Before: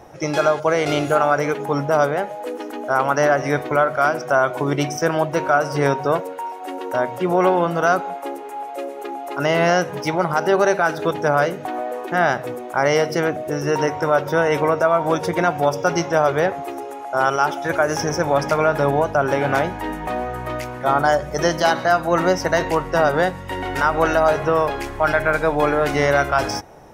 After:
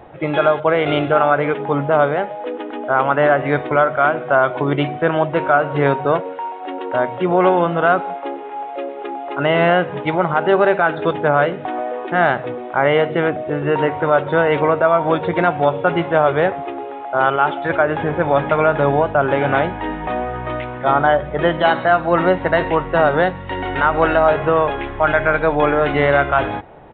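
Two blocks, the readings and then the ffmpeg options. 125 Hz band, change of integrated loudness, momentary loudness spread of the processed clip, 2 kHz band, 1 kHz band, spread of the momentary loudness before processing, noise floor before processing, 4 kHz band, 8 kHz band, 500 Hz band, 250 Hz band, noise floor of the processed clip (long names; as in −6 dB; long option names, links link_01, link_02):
+2.5 dB, +2.5 dB, 10 LU, +2.5 dB, +2.5 dB, 10 LU, −33 dBFS, 0.0 dB, below −40 dB, +2.5 dB, +2.5 dB, −30 dBFS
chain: -af "aresample=8000,aresample=44100,volume=2.5dB"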